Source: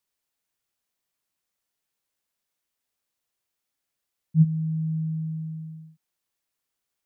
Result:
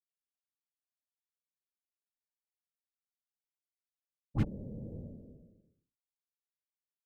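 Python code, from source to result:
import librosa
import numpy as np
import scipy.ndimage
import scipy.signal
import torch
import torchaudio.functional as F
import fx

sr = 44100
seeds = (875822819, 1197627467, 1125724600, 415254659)

y = fx.comb_fb(x, sr, f0_hz=140.0, decay_s=0.2, harmonics='all', damping=0.0, mix_pct=60)
y = fx.cheby_harmonics(y, sr, harmonics=(7, 8), levels_db=(-17, -36), full_scale_db=-19.0)
y = fx.whisperise(y, sr, seeds[0])
y = y * 10.0 ** (-5.0 / 20.0)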